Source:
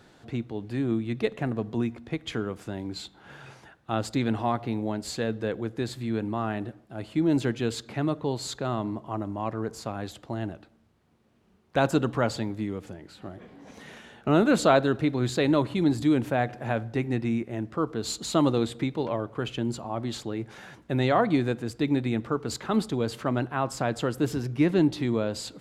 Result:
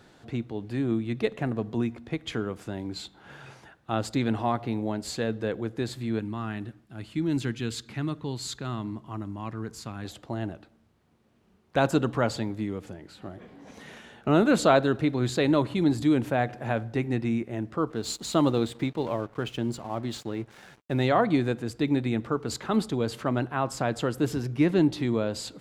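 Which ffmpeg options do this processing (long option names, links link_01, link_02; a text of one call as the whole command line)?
ffmpeg -i in.wav -filter_complex "[0:a]asettb=1/sr,asplit=3[link_01][link_02][link_03];[link_01]atrim=end=6.194[link_04];[link_02]atrim=start=6.19:end=10.05,asetpts=PTS-STARTPTS,afade=type=in:duration=0.004:curve=qsin,afade=type=out:start_time=3.856:duration=0.004:curve=qsin,equalizer=frequency=600:width_type=o:width=1.4:gain=-11.5[link_05];[link_03]atrim=start=10.046[link_06];[link_04][link_05]acrossfade=duration=0.004:curve1=hsin:curve2=qsin[link_07];[link_07][link_06]acrossfade=duration=0.004:curve1=qsin:curve2=hsin,asettb=1/sr,asplit=3[link_08][link_09][link_10];[link_08]atrim=end=17.904[link_11];[link_09]atrim=start=17.9:end=21.09,asetpts=PTS-STARTPTS,afade=type=in:duration=0.004:curve=qsin,afade=type=out:start_time=3.186:duration=0.004:curve=qsin,aeval=exprs='sgn(val(0))*max(abs(val(0))-0.00316,0)':channel_layout=same[link_12];[link_10]atrim=start=21.086[link_13];[link_11][link_12]acrossfade=duration=0.004:curve1=hsin:curve2=qsin[link_14];[link_14][link_13]acrossfade=duration=0.004:curve1=qsin:curve2=hsin" out.wav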